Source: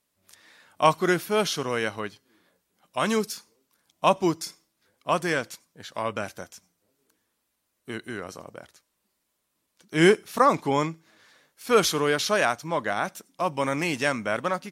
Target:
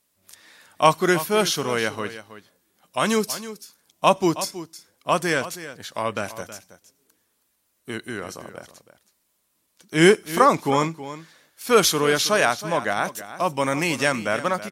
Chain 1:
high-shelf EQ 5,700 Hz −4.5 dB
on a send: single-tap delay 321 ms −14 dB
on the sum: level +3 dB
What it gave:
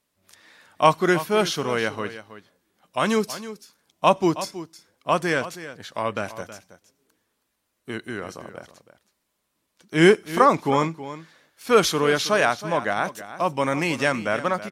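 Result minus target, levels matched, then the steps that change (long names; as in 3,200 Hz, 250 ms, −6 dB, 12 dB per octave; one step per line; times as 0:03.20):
8,000 Hz band −5.5 dB
change: high-shelf EQ 5,700 Hz +5.5 dB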